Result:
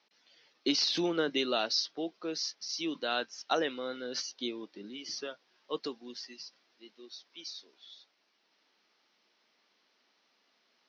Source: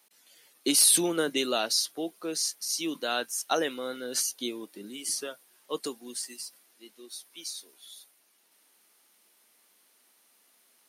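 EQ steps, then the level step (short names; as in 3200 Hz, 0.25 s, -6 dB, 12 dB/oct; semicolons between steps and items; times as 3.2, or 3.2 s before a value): steep low-pass 5700 Hz 72 dB/oct; -2.5 dB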